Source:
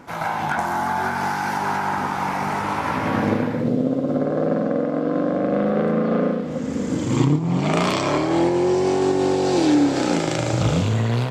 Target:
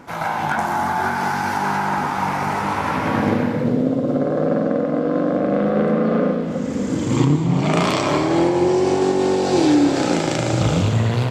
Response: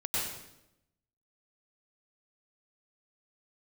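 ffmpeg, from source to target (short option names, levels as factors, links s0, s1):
-filter_complex "[0:a]asplit=2[s0][s1];[1:a]atrim=start_sample=2205,adelay=90[s2];[s1][s2]afir=irnorm=-1:irlink=0,volume=0.158[s3];[s0][s3]amix=inputs=2:normalize=0,volume=1.19"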